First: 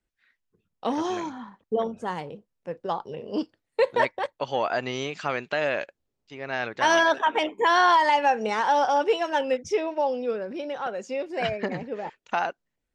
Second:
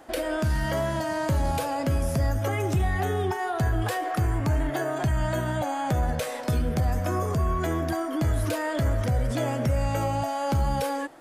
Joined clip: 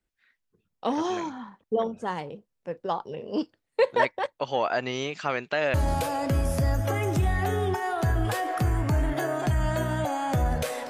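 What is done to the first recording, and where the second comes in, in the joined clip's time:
first
0:05.74: continue with second from 0:01.31

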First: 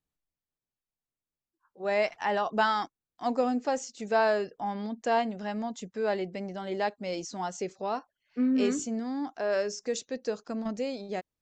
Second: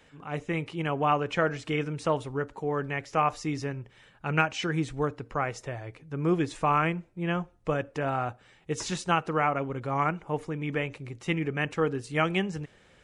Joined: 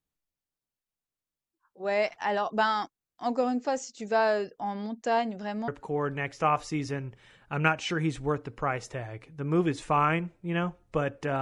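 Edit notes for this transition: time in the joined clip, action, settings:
first
0:05.68: continue with second from 0:02.41

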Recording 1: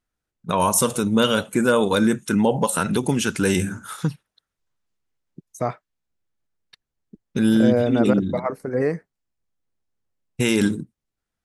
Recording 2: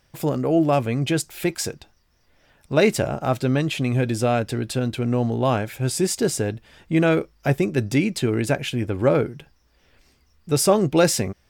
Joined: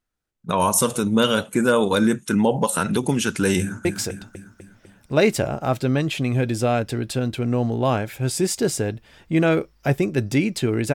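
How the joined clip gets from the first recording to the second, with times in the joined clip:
recording 1
0:03.60–0:03.85: delay throw 250 ms, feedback 55%, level −4.5 dB
0:03.85: continue with recording 2 from 0:01.45

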